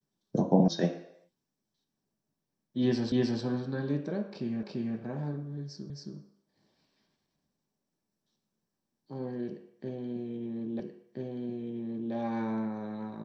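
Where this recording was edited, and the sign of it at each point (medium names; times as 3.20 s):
0.68 s: sound stops dead
3.12 s: repeat of the last 0.31 s
4.63 s: repeat of the last 0.34 s
5.90 s: repeat of the last 0.27 s
10.80 s: repeat of the last 1.33 s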